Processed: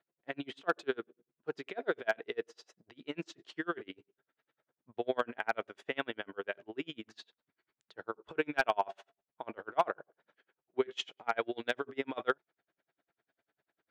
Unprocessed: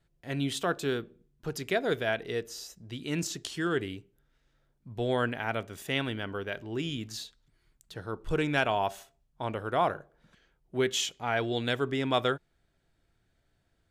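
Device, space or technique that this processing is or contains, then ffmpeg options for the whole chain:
helicopter radio: -af "highpass=370,lowpass=2.5k,aeval=exprs='val(0)*pow(10,-35*(0.5-0.5*cos(2*PI*10*n/s))/20)':c=same,asoftclip=type=hard:threshold=-20.5dB,volume=4dB"

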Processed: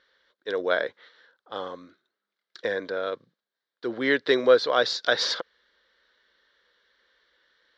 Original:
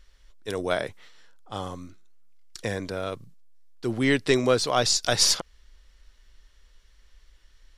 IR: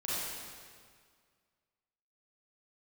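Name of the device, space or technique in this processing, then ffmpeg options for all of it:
phone earpiece: -af "highpass=330,equalizer=f=500:t=q:w=4:g=7,equalizer=f=770:t=q:w=4:g=-4,equalizer=f=1.6k:t=q:w=4:g=8,equalizer=f=2.6k:t=q:w=4:g=-9,equalizer=f=3.8k:t=q:w=4:g=5,lowpass=f=4.1k:w=0.5412,lowpass=f=4.1k:w=1.3066"

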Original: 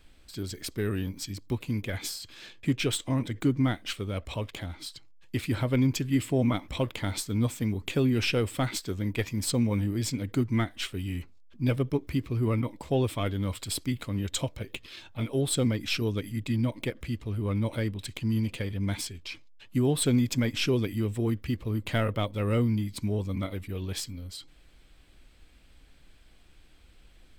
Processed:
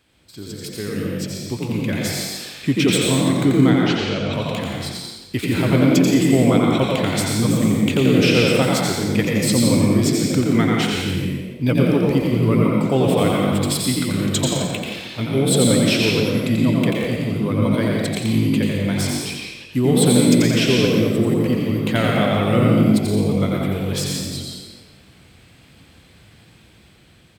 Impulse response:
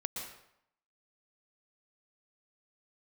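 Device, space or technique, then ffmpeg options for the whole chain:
far laptop microphone: -filter_complex "[0:a]asettb=1/sr,asplit=3[a][b][c];[a]atrim=end=3.704[d];[b]atrim=start=3.7:end=4.33,asetpts=PTS-STARTPTS,afade=t=in:d=0.004:c=qsin,afade=t=out:st=0.626:d=0.004:c=qsin,lowpass=f=5.8k:w=0.5412,lowpass=f=5.8k:w=1.3066[e];[c]atrim=start=4.326[f];[d][e]acrossfade=d=0.004:c1=hsin:c2=qsin[g];[g][f]acrossfade=d=0.004:c1=qsin:c2=hsin,asplit=8[h][i][j][k][l][m][n][o];[i]adelay=87,afreqshift=47,volume=-4dB[p];[j]adelay=174,afreqshift=94,volume=-9.5dB[q];[k]adelay=261,afreqshift=141,volume=-15dB[r];[l]adelay=348,afreqshift=188,volume=-20.5dB[s];[m]adelay=435,afreqshift=235,volume=-26.1dB[t];[n]adelay=522,afreqshift=282,volume=-31.6dB[u];[o]adelay=609,afreqshift=329,volume=-37.1dB[v];[h][p][q][r][s][t][u][v]amix=inputs=8:normalize=0[w];[1:a]atrim=start_sample=2205[x];[w][x]afir=irnorm=-1:irlink=0,highpass=110,dynaudnorm=f=490:g=7:m=7.5dB,volume=2dB"

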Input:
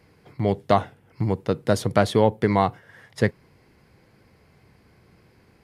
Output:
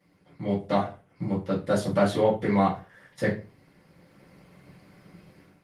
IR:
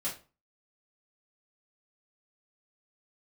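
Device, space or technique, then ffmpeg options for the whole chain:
far-field microphone of a smart speaker: -filter_complex "[1:a]atrim=start_sample=2205[a];[0:a][a]afir=irnorm=-1:irlink=0,highpass=f=87:w=0.5412,highpass=f=87:w=1.3066,dynaudnorm=f=360:g=3:m=10.5dB,volume=-8.5dB" -ar 48000 -c:a libopus -b:a 20k

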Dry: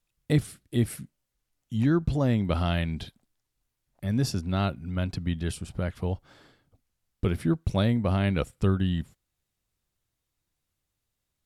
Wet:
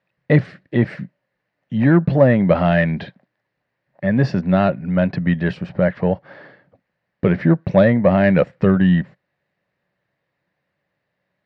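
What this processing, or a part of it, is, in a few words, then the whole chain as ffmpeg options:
overdrive pedal into a guitar cabinet: -filter_complex "[0:a]asplit=2[a][b];[b]highpass=f=720:p=1,volume=16dB,asoftclip=type=tanh:threshold=-9.5dB[c];[a][c]amix=inputs=2:normalize=0,lowpass=f=1.2k:p=1,volume=-6dB,highpass=100,equalizer=f=130:t=q:w=4:g=6,equalizer=f=180:t=q:w=4:g=10,equalizer=f=570:t=q:w=4:g=9,equalizer=f=1.3k:t=q:w=4:g=-4,equalizer=f=1.8k:t=q:w=4:g=10,equalizer=f=3.4k:t=q:w=4:g=-7,lowpass=f=4.3k:w=0.5412,lowpass=f=4.3k:w=1.3066,volume=5.5dB"

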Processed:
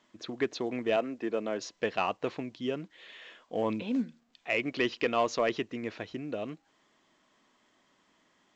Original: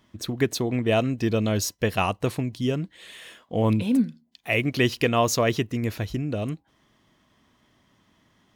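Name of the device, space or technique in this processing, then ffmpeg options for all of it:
telephone: -filter_complex "[0:a]asettb=1/sr,asplit=3[a][b][c];[a]atrim=end=0.964[d];[b]atrim=start=0.96:end=1.61,asetpts=PTS-STARTPTS,afade=t=in:d=0.004:c=qsin,afade=t=out:st=0.646:d=0.004:c=qsin,acrossover=split=200 2300:gain=0.2 1 0.224[e][f][g];[e][f][g]amix=inputs=3:normalize=0[h];[c]atrim=start=1.606[i];[d][h]acrossfade=d=0.004:c1=hsin:c2=qsin[j];[j][i]acrossfade=d=0.004:c1=qsin:c2=hsin,highpass=300,lowpass=3.5k,asoftclip=type=tanh:threshold=-11dB,volume=-4dB" -ar 16000 -c:a pcm_alaw

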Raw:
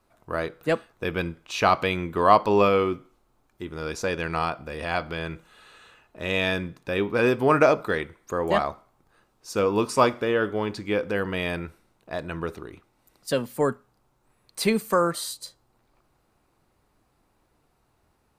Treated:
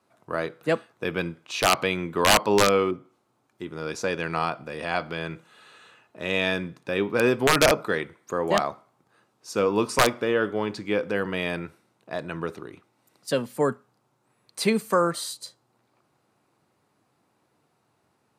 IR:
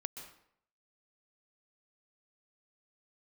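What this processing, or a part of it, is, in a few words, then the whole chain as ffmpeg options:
overflowing digital effects unit: -filter_complex "[0:a]highpass=f=110:w=0.5412,highpass=f=110:w=1.3066,aeval=exprs='(mod(2.82*val(0)+1,2)-1)/2.82':c=same,lowpass=12k,asettb=1/sr,asplit=3[a][b][c];[a]atrim=end=2.914[d];[b]atrim=start=2.91:end=3.88,asetpts=PTS-STARTPTS,afade=t=in:d=0.004:c=qsin,afade=t=out:st=0.966:d=0.004:c=qsin,adynamicequalizer=threshold=0.00316:dfrequency=1500:dqfactor=0.7:tfrequency=1500:tqfactor=0.7:attack=5:release=100:ratio=0.375:range=3:mode=cutabove:tftype=highshelf[e];[c]atrim=start=3.876[f];[d][e]acrossfade=d=0.004:c1=hsin:c2=qsin[g];[g][f]acrossfade=d=0.004:c1=qsin:c2=hsin"

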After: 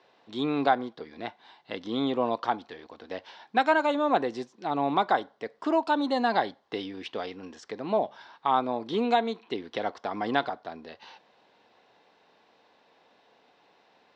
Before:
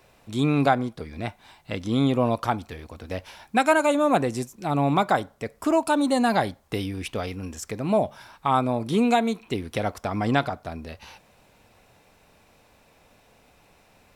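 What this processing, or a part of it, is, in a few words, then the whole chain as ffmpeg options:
phone earpiece: -af "highpass=360,equalizer=f=590:t=q:w=4:g=-5,equalizer=f=1.3k:t=q:w=4:g=-5,equalizer=f=2.4k:t=q:w=4:g=-9,lowpass=f=4.4k:w=0.5412,lowpass=f=4.4k:w=1.3066"

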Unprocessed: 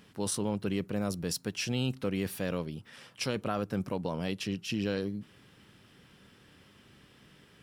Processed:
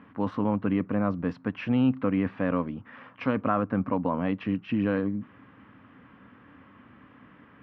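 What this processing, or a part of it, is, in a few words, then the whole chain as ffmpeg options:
bass cabinet: -af "highpass=81,equalizer=f=150:t=q:w=4:g=-7,equalizer=f=270:t=q:w=4:g=9,equalizer=f=380:t=q:w=4:g=-9,equalizer=f=1.1k:t=q:w=4:g=8,lowpass=f=2.1k:w=0.5412,lowpass=f=2.1k:w=1.3066,volume=6dB"

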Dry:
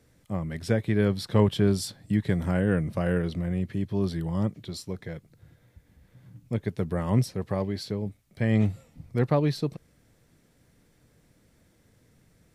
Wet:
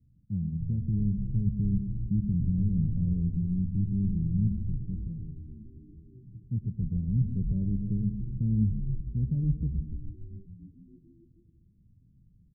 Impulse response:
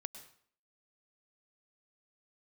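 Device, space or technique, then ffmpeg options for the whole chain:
club heard from the street: -filter_complex "[0:a]alimiter=limit=-17dB:level=0:latency=1:release=17,lowpass=f=200:w=0.5412,lowpass=f=200:w=1.3066[a];[1:a]atrim=start_sample=2205[b];[a][b]afir=irnorm=-1:irlink=0,asplit=3[c][d][e];[c]afade=t=out:st=7.27:d=0.02[f];[d]equalizer=f=450:t=o:w=2.4:g=5.5,afade=t=in:st=7.27:d=0.02,afade=t=out:st=8.63:d=0.02[g];[e]afade=t=in:st=8.63:d=0.02[h];[f][g][h]amix=inputs=3:normalize=0,asplit=7[i][j][k][l][m][n][o];[j]adelay=288,afreqshift=-81,volume=-5.5dB[p];[k]adelay=576,afreqshift=-162,volume=-11.5dB[q];[l]adelay=864,afreqshift=-243,volume=-17.5dB[r];[m]adelay=1152,afreqshift=-324,volume=-23.6dB[s];[n]adelay=1440,afreqshift=-405,volume=-29.6dB[t];[o]adelay=1728,afreqshift=-486,volume=-35.6dB[u];[i][p][q][r][s][t][u]amix=inputs=7:normalize=0,volume=5dB"

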